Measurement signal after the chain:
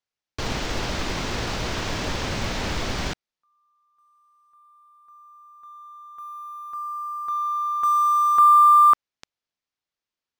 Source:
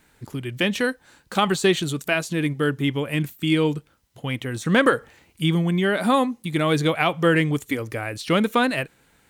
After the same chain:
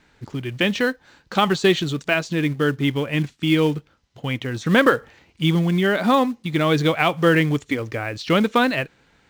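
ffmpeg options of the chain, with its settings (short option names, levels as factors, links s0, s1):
-filter_complex "[0:a]lowpass=f=6100:w=0.5412,lowpass=f=6100:w=1.3066,asplit=2[s0][s1];[s1]acrusher=bits=3:mode=log:mix=0:aa=0.000001,volume=0.398[s2];[s0][s2]amix=inputs=2:normalize=0,volume=0.891"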